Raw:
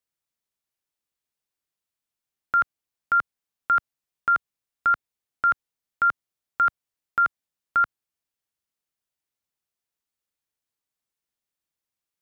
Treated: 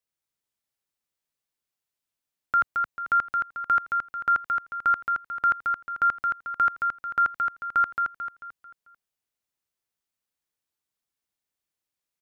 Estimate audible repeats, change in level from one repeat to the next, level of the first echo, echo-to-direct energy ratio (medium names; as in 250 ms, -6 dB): 5, -7.5 dB, -4.5 dB, -3.5 dB